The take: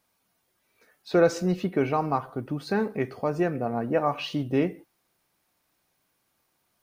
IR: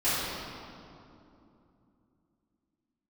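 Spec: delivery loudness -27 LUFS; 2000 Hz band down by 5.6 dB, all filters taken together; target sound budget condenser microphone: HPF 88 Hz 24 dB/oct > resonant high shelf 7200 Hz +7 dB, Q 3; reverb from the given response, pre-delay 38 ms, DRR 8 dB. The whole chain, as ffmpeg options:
-filter_complex "[0:a]equalizer=f=2k:t=o:g=-7.5,asplit=2[a][b];[1:a]atrim=start_sample=2205,adelay=38[c];[b][c]afir=irnorm=-1:irlink=0,volume=-21dB[d];[a][d]amix=inputs=2:normalize=0,highpass=f=88:w=0.5412,highpass=f=88:w=1.3066,highshelf=f=7.2k:t=q:w=3:g=7"

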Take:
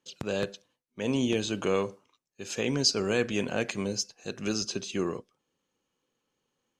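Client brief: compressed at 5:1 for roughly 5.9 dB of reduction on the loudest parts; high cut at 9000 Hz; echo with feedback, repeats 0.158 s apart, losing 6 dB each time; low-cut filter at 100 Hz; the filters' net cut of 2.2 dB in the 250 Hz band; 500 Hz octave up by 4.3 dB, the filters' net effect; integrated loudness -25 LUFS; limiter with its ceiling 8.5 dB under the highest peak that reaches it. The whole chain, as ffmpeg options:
-af "highpass=100,lowpass=9k,equalizer=f=250:t=o:g=-5,equalizer=f=500:t=o:g=6.5,acompressor=threshold=-25dB:ratio=5,alimiter=level_in=0.5dB:limit=-24dB:level=0:latency=1,volume=-0.5dB,aecho=1:1:158|316|474|632|790|948:0.501|0.251|0.125|0.0626|0.0313|0.0157,volume=10dB"

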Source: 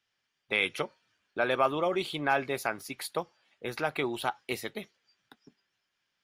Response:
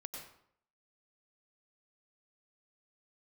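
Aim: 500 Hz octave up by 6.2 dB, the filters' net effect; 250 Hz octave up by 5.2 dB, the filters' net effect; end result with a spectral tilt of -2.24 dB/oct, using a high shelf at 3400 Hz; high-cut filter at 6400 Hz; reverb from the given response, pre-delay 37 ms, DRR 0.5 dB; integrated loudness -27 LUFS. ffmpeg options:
-filter_complex "[0:a]lowpass=6.4k,equalizer=f=250:t=o:g=4,equalizer=f=500:t=o:g=6.5,highshelf=f=3.4k:g=8,asplit=2[a][b];[1:a]atrim=start_sample=2205,adelay=37[c];[b][c]afir=irnorm=-1:irlink=0,volume=2dB[d];[a][d]amix=inputs=2:normalize=0,volume=-2dB"

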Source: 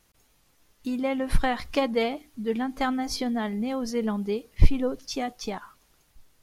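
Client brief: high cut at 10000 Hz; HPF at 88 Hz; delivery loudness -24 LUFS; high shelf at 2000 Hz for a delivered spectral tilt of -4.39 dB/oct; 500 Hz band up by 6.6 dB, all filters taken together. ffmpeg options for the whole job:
-af "highpass=88,lowpass=10k,equalizer=f=500:t=o:g=7,highshelf=f=2k:g=3,volume=1dB"

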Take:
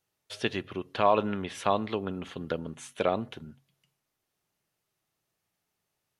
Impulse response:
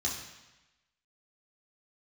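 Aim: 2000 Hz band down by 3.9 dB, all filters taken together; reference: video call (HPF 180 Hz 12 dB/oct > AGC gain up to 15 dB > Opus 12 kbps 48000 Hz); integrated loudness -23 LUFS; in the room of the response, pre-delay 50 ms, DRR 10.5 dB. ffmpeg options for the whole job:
-filter_complex "[0:a]equalizer=f=2k:t=o:g=-5.5,asplit=2[a][b];[1:a]atrim=start_sample=2205,adelay=50[c];[b][c]afir=irnorm=-1:irlink=0,volume=-15dB[d];[a][d]amix=inputs=2:normalize=0,highpass=180,dynaudnorm=m=15dB,volume=8.5dB" -ar 48000 -c:a libopus -b:a 12k

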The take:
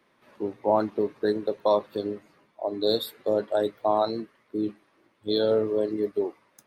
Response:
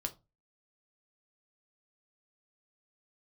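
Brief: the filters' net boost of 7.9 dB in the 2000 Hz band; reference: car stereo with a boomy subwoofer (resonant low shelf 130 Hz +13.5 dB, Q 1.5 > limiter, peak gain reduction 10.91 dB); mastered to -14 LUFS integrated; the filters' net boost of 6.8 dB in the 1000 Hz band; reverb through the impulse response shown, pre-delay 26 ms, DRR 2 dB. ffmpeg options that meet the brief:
-filter_complex "[0:a]equalizer=f=1k:t=o:g=7.5,equalizer=f=2k:t=o:g=7.5,asplit=2[a][b];[1:a]atrim=start_sample=2205,adelay=26[c];[b][c]afir=irnorm=-1:irlink=0,volume=-2dB[d];[a][d]amix=inputs=2:normalize=0,lowshelf=f=130:t=q:w=1.5:g=13.5,volume=12dB,alimiter=limit=-2dB:level=0:latency=1"

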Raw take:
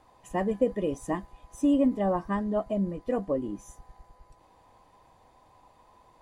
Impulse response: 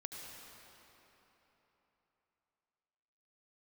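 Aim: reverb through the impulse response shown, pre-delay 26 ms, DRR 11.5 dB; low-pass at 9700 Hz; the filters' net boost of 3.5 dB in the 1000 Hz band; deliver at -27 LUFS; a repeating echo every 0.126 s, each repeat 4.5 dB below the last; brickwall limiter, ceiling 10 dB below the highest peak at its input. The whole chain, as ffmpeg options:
-filter_complex "[0:a]lowpass=9.7k,equalizer=f=1k:t=o:g=4.5,alimiter=limit=-23dB:level=0:latency=1,aecho=1:1:126|252|378|504|630|756|882|1008|1134:0.596|0.357|0.214|0.129|0.0772|0.0463|0.0278|0.0167|0.01,asplit=2[a][b];[1:a]atrim=start_sample=2205,adelay=26[c];[b][c]afir=irnorm=-1:irlink=0,volume=-9.5dB[d];[a][d]amix=inputs=2:normalize=0,volume=4dB"

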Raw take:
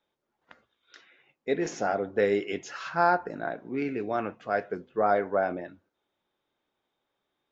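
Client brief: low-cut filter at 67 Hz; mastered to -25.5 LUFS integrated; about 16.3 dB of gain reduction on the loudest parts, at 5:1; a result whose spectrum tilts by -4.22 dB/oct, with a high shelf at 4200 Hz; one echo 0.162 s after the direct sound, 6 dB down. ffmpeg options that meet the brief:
-af "highpass=67,highshelf=f=4.2k:g=-7,acompressor=threshold=-38dB:ratio=5,aecho=1:1:162:0.501,volume=15.5dB"

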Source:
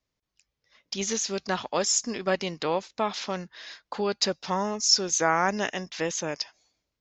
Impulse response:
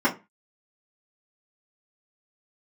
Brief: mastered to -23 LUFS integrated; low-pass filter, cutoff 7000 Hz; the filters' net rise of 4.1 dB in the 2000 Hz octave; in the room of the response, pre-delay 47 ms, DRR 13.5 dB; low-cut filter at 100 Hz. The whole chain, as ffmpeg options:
-filter_complex "[0:a]highpass=100,lowpass=7k,equalizer=f=2k:t=o:g=5.5,asplit=2[a][b];[1:a]atrim=start_sample=2205,adelay=47[c];[b][c]afir=irnorm=-1:irlink=0,volume=-29dB[d];[a][d]amix=inputs=2:normalize=0,volume=3.5dB"

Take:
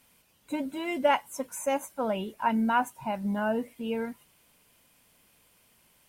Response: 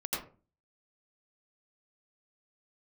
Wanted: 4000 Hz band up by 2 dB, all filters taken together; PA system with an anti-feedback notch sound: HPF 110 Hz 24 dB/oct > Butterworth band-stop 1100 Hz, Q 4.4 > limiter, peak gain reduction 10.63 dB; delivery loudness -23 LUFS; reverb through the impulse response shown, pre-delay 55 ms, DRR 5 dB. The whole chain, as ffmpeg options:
-filter_complex "[0:a]equalizer=f=4k:t=o:g=3.5,asplit=2[a][b];[1:a]atrim=start_sample=2205,adelay=55[c];[b][c]afir=irnorm=-1:irlink=0,volume=-9.5dB[d];[a][d]amix=inputs=2:normalize=0,highpass=f=110:w=0.5412,highpass=f=110:w=1.3066,asuperstop=centerf=1100:order=8:qfactor=4.4,volume=8.5dB,alimiter=limit=-13.5dB:level=0:latency=1"

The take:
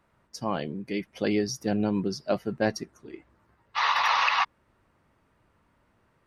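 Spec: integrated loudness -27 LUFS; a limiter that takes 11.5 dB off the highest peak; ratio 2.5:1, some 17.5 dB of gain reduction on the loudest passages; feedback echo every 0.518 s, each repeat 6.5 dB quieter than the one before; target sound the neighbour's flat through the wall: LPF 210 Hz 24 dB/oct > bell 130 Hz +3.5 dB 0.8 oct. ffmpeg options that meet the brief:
-af "acompressor=threshold=-48dB:ratio=2.5,alimiter=level_in=15.5dB:limit=-24dB:level=0:latency=1,volume=-15.5dB,lowpass=f=210:w=0.5412,lowpass=f=210:w=1.3066,equalizer=f=130:t=o:w=0.8:g=3.5,aecho=1:1:518|1036|1554|2072|2590|3108:0.473|0.222|0.105|0.0491|0.0231|0.0109,volume=28dB"

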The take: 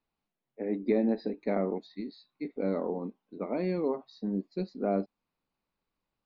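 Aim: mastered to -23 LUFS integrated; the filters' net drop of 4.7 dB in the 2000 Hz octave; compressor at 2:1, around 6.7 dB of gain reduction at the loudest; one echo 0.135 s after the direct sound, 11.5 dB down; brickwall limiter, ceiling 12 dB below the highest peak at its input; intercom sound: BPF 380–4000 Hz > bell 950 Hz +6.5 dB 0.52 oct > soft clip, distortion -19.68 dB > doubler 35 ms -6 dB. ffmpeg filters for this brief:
-filter_complex "[0:a]equalizer=f=2k:t=o:g=-6,acompressor=threshold=-35dB:ratio=2,alimiter=level_in=10.5dB:limit=-24dB:level=0:latency=1,volume=-10.5dB,highpass=380,lowpass=4k,equalizer=f=950:t=o:w=0.52:g=6.5,aecho=1:1:135:0.266,asoftclip=threshold=-37.5dB,asplit=2[a][b];[b]adelay=35,volume=-6dB[c];[a][c]amix=inputs=2:normalize=0,volume=25dB"

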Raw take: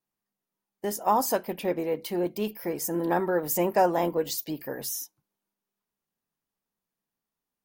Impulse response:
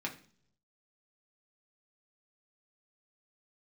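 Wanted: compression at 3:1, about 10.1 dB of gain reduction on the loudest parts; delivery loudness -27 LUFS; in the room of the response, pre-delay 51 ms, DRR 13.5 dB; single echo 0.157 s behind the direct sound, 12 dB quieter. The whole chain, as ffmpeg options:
-filter_complex "[0:a]acompressor=threshold=-31dB:ratio=3,aecho=1:1:157:0.251,asplit=2[a][b];[1:a]atrim=start_sample=2205,adelay=51[c];[b][c]afir=irnorm=-1:irlink=0,volume=-16dB[d];[a][d]amix=inputs=2:normalize=0,volume=6.5dB"

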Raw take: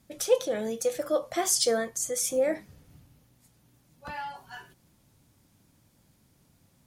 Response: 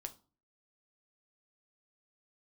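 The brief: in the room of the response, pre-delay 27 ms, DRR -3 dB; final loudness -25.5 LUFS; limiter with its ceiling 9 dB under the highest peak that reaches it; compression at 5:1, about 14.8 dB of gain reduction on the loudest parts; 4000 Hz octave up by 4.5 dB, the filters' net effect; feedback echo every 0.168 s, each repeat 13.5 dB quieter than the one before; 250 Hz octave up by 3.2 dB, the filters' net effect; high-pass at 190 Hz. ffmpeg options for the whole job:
-filter_complex "[0:a]highpass=190,equalizer=f=250:t=o:g=5.5,equalizer=f=4k:t=o:g=6,acompressor=threshold=-33dB:ratio=5,alimiter=level_in=5dB:limit=-24dB:level=0:latency=1,volume=-5dB,aecho=1:1:168|336:0.211|0.0444,asplit=2[a][b];[1:a]atrim=start_sample=2205,adelay=27[c];[b][c]afir=irnorm=-1:irlink=0,volume=6.5dB[d];[a][d]amix=inputs=2:normalize=0,volume=8dB"

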